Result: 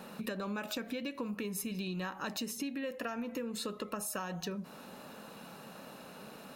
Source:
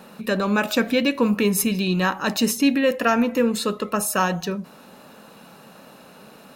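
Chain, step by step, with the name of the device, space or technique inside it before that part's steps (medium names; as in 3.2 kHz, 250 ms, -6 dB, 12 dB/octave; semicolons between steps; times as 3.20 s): serial compression, peaks first (compression, threshold -27 dBFS, peak gain reduction 13 dB; compression 2:1, threshold -35 dBFS, peak gain reduction 6 dB); trim -3.5 dB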